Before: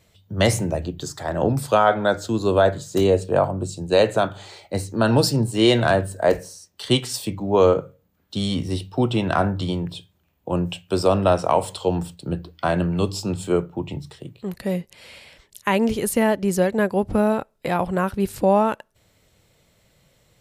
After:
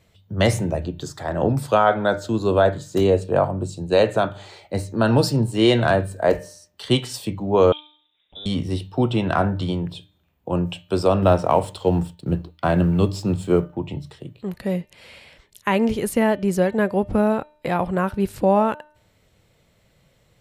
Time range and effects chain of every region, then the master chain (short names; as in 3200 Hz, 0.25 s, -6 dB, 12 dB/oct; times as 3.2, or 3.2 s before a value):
7.72–8.46 notch 2400 Hz, Q 26 + compressor 1.5:1, threshold -56 dBFS + inverted band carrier 3700 Hz
11.22–13.77 G.711 law mismatch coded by A + low shelf 360 Hz +5 dB
whole clip: tone controls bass +1 dB, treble -5 dB; de-hum 301.1 Hz, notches 14